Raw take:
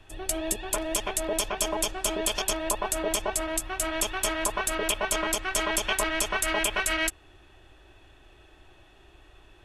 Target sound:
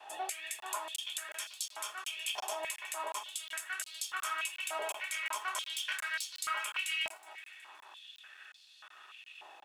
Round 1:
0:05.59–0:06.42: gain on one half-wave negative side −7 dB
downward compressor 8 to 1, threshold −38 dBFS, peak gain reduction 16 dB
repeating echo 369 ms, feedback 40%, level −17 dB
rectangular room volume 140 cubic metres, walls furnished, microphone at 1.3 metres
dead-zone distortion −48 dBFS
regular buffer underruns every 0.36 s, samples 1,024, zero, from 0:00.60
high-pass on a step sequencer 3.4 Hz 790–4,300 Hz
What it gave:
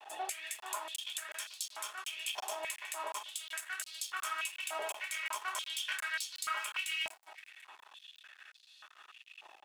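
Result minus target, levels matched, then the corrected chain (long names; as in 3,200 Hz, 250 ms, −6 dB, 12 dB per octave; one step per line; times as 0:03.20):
dead-zone distortion: distortion +11 dB
0:05.59–0:06.42: gain on one half-wave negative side −7 dB
downward compressor 8 to 1, threshold −38 dBFS, peak gain reduction 16 dB
repeating echo 369 ms, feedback 40%, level −17 dB
rectangular room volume 140 cubic metres, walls furnished, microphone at 1.3 metres
dead-zone distortion −59 dBFS
regular buffer underruns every 0.36 s, samples 1,024, zero, from 0:00.60
high-pass on a step sequencer 3.4 Hz 790–4,300 Hz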